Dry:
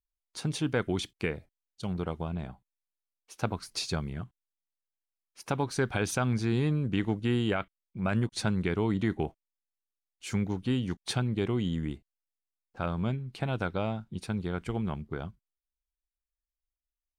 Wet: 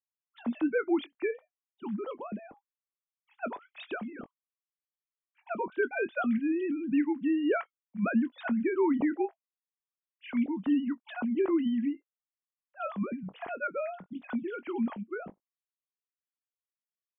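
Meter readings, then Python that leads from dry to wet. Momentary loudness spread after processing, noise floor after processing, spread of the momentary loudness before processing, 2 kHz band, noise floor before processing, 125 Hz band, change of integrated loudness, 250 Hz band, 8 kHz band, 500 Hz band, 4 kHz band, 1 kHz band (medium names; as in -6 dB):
14 LU, under -85 dBFS, 11 LU, 0.0 dB, under -85 dBFS, under -15 dB, 0.0 dB, +2.5 dB, under -35 dB, +1.5 dB, under -10 dB, -0.5 dB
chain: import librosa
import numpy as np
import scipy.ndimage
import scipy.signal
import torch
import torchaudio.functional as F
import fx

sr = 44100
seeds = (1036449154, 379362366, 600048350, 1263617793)

y = fx.sine_speech(x, sr)
y = fx.air_absorb(y, sr, metres=240.0)
y = fx.doubler(y, sr, ms=21.0, db=-13.5)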